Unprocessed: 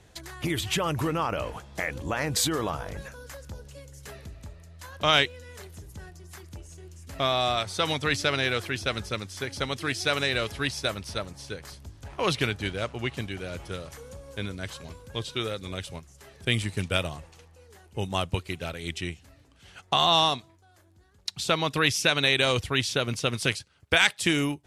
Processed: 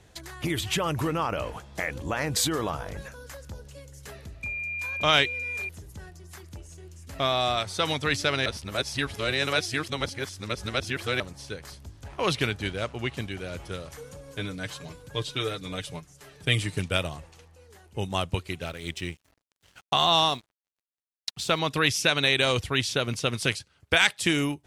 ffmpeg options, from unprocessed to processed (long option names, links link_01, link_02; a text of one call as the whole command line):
ffmpeg -i in.wav -filter_complex "[0:a]asettb=1/sr,asplit=3[link_01][link_02][link_03];[link_01]atrim=end=4.434[link_04];[link_02]atrim=start=4.43:end=5.69,asetpts=PTS-STARTPTS,afade=type=in:duration=0.004:curve=qsin,afade=type=out:start_time=1.256:duration=0.004:curve=qsin,aeval=exprs='val(0)+0.0316*sin(2*PI*2400*n/s)':channel_layout=same[link_05];[link_03]atrim=start=5.686[link_06];[link_04][link_05]acrossfade=duration=0.004:curve1=hsin:curve2=qsin[link_07];[link_07][link_06]acrossfade=duration=0.004:curve1=qsin:curve2=hsin,asettb=1/sr,asplit=3[link_08][link_09][link_10];[link_08]atrim=end=13.974[link_11];[link_09]atrim=start=13.97:end=16.79,asetpts=PTS-STARTPTS,afade=type=in:duration=0.004:curve=qsin,afade=type=out:start_time=2.816:duration=0.004:curve=qsin,aecho=1:1:6.7:0.65,atrim=end_sample=124362[link_12];[link_10]atrim=start=16.786[link_13];[link_11][link_12]acrossfade=duration=0.004:curve1=hsin:curve2=qsin[link_14];[link_14][link_13]acrossfade=duration=0.004:curve1=qsin:curve2=hsin,asettb=1/sr,asplit=3[link_15][link_16][link_17];[link_15]atrim=end=18.654[link_18];[link_16]atrim=start=18.65:end=21.59,asetpts=PTS-STARTPTS,afade=type=in:duration=0.004:curve=qsin,afade=type=out:start_time=2.936:duration=0.004:curve=qsin,aeval=exprs='sgn(val(0))*max(abs(val(0))-0.00299,0)':channel_layout=same[link_19];[link_17]atrim=start=21.586[link_20];[link_18][link_19]acrossfade=duration=0.004:curve1=hsin:curve2=qsin[link_21];[link_21][link_20]acrossfade=duration=0.004:curve1=qsin:curve2=hsin,asplit=3[link_22][link_23][link_24];[link_22]atrim=end=8.462[link_25];[link_23]atrim=start=8.458:end=11.202,asetpts=PTS-STARTPTS,areverse[link_26];[link_24]atrim=start=11.198[link_27];[link_25][link_26]acrossfade=duration=0.004:curve1=hsin:curve2=hsin[link_28];[link_28][link_27]acrossfade=duration=0.004:curve1=hsin:curve2=hsin" out.wav